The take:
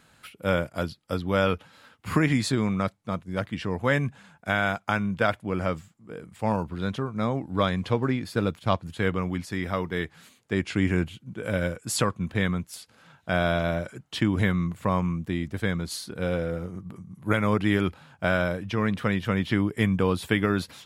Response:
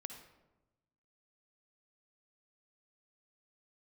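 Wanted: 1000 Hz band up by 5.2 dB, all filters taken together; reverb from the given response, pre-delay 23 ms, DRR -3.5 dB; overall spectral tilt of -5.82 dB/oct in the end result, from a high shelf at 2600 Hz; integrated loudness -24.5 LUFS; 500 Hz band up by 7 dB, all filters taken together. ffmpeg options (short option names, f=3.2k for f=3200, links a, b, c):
-filter_complex "[0:a]equalizer=f=500:t=o:g=7,equalizer=f=1k:t=o:g=5.5,highshelf=f=2.6k:g=-3.5,asplit=2[a][b];[1:a]atrim=start_sample=2205,adelay=23[c];[b][c]afir=irnorm=-1:irlink=0,volume=7dB[d];[a][d]amix=inputs=2:normalize=0,volume=-6dB"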